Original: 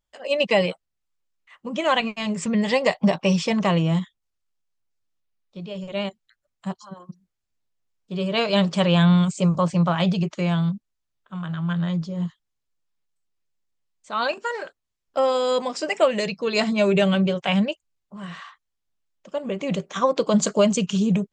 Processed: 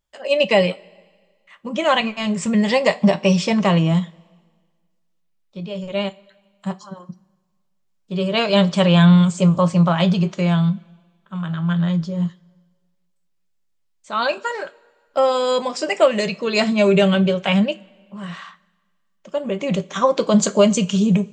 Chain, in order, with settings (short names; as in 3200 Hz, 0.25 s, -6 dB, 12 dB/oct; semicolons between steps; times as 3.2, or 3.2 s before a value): two-slope reverb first 0.21 s, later 1.6 s, from -22 dB, DRR 9.5 dB; gain +3 dB